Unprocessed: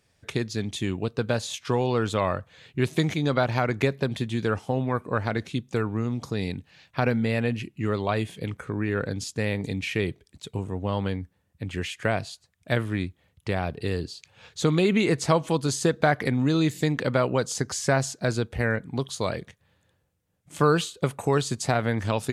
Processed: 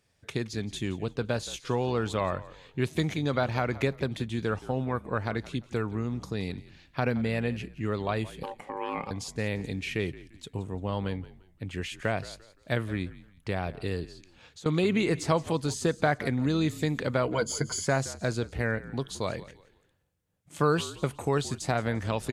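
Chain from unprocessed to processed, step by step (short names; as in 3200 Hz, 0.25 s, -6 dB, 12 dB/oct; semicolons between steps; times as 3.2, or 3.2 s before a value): de-esser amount 55%; 8.43–9.11 ring modulator 680 Hz; 14.04–14.66 compressor 5:1, threshold -44 dBFS, peak gain reduction 22 dB; 17.26–17.86 ripple EQ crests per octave 1.8, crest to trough 14 dB; on a send: frequency-shifting echo 0.172 s, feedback 31%, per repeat -52 Hz, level -17.5 dB; on the sum: gain -4 dB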